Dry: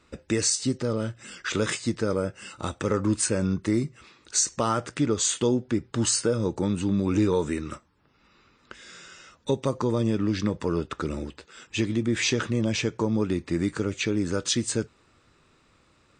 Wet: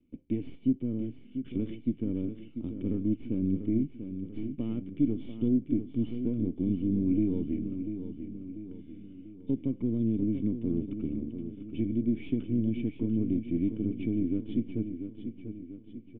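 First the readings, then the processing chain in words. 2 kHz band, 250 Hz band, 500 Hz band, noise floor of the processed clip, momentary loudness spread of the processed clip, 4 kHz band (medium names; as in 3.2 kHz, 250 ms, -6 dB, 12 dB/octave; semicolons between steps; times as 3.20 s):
under -20 dB, -1.0 dB, -11.5 dB, -51 dBFS, 12 LU, under -25 dB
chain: partial rectifier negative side -12 dB; cascade formant filter i; tilt shelf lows +6.5 dB, about 1.1 kHz; feedback delay 692 ms, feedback 50%, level -9 dB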